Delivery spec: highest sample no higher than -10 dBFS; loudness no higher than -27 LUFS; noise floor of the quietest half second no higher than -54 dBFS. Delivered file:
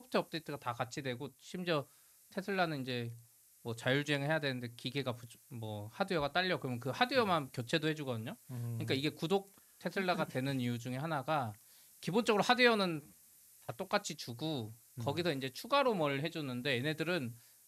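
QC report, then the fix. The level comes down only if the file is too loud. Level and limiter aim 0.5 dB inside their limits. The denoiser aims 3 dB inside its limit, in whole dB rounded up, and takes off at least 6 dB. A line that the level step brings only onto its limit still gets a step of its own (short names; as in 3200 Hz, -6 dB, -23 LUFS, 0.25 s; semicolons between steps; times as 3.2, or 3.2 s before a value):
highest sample -14.0 dBFS: OK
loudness -36.0 LUFS: OK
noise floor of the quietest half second -63 dBFS: OK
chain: none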